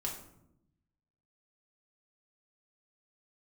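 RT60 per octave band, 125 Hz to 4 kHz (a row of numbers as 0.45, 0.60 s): 1.4, 1.2, 0.90, 0.70, 0.55, 0.45 s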